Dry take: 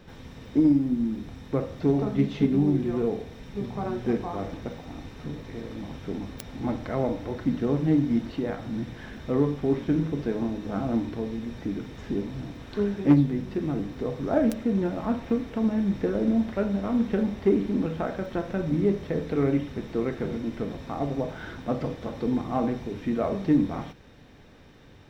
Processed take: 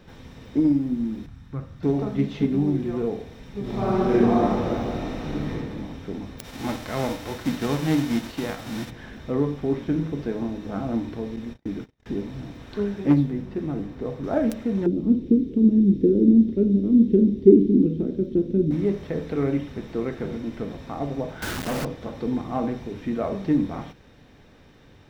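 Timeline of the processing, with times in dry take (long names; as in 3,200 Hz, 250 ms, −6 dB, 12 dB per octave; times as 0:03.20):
0:01.26–0:01.83: drawn EQ curve 140 Hz 0 dB, 490 Hz −17 dB, 1,400 Hz −4 dB, 2,100 Hz −9 dB
0:03.61–0:05.50: thrown reverb, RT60 1.8 s, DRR −8.5 dB
0:06.43–0:08.89: spectral envelope flattened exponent 0.6
0:11.36–0:12.06: noise gate −37 dBFS, range −36 dB
0:13.10–0:14.24: one half of a high-frequency compander decoder only
0:14.86–0:18.71: drawn EQ curve 110 Hz 0 dB, 180 Hz +7 dB, 380 Hz +11 dB, 700 Hz −22 dB, 1,600 Hz −23 dB, 3,500 Hz −9 dB, 7,400 Hz −13 dB
0:21.42–0:21.85: log-companded quantiser 2 bits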